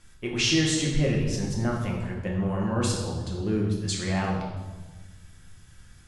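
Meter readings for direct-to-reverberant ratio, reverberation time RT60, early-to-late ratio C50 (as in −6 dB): −2.5 dB, 1.3 s, 3.0 dB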